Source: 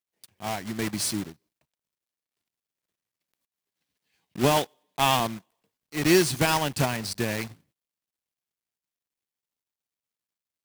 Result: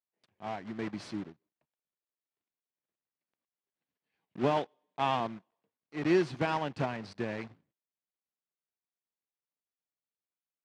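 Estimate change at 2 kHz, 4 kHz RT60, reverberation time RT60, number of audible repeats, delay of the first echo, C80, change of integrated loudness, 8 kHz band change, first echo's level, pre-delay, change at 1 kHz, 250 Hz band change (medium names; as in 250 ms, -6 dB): -9.5 dB, no reverb, no reverb, no echo, no echo, no reverb, -8.0 dB, under -25 dB, no echo, no reverb, -6.5 dB, -6.5 dB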